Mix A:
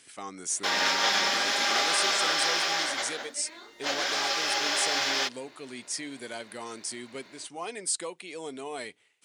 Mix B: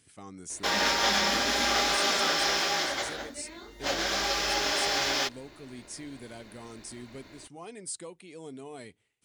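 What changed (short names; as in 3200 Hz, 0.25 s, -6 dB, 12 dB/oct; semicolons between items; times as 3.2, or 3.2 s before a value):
speech -9.5 dB; master: remove weighting filter A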